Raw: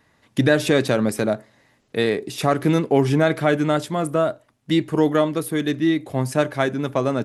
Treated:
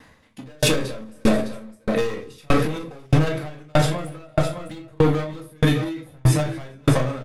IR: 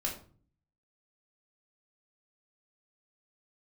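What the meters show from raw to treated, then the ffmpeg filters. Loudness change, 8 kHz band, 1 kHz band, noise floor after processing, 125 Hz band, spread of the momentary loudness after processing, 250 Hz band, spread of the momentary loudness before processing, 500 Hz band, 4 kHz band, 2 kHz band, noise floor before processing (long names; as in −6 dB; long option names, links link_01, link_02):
−2.0 dB, +2.5 dB, −3.5 dB, −52 dBFS, +3.0 dB, 12 LU, −3.5 dB, 6 LU, −4.5 dB, 0.0 dB, −4.0 dB, −63 dBFS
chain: -filter_complex "[0:a]asubboost=boost=9.5:cutoff=81,volume=20dB,asoftclip=hard,volume=-20dB,aecho=1:1:207|233|408|609:0.112|0.112|0.133|0.282[link_01];[1:a]atrim=start_sample=2205,afade=type=out:start_time=0.14:duration=0.01,atrim=end_sample=6615,asetrate=37485,aresample=44100[link_02];[link_01][link_02]afir=irnorm=-1:irlink=0,alimiter=level_in=14.5dB:limit=-1dB:release=50:level=0:latency=1,aeval=exprs='val(0)*pow(10,-38*if(lt(mod(1.6*n/s,1),2*abs(1.6)/1000),1-mod(1.6*n/s,1)/(2*abs(1.6)/1000),(mod(1.6*n/s,1)-2*abs(1.6)/1000)/(1-2*abs(1.6)/1000))/20)':channel_layout=same,volume=-4dB"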